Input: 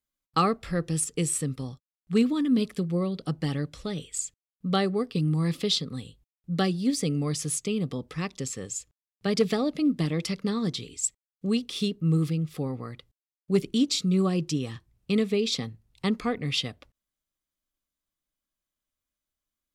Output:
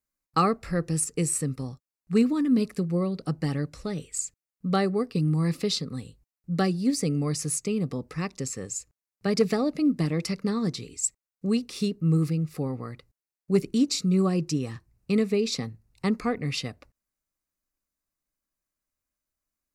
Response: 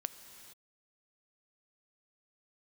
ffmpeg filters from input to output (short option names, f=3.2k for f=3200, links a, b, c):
-af "equalizer=f=3.3k:w=4.8:g=-15,volume=1dB"